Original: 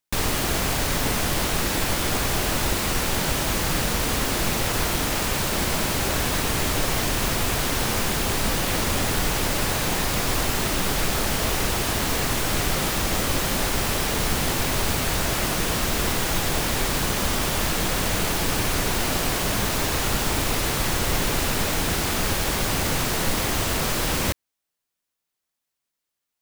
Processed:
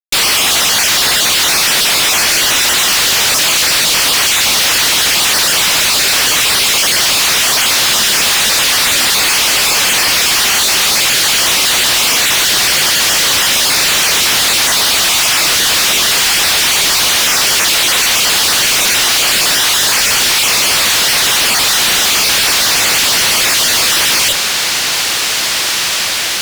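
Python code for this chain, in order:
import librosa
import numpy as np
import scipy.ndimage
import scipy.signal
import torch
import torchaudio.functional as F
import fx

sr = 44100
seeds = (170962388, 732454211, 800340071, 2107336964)

y = fx.spec_dropout(x, sr, seeds[0], share_pct=20)
y = fx.bandpass_q(y, sr, hz=4200.0, q=0.83)
y = fx.echo_diffused(y, sr, ms=1905, feedback_pct=61, wet_db=-15.0)
y = fx.fuzz(y, sr, gain_db=48.0, gate_db=-52.0)
y = y * 10.0 ** (3.0 / 20.0)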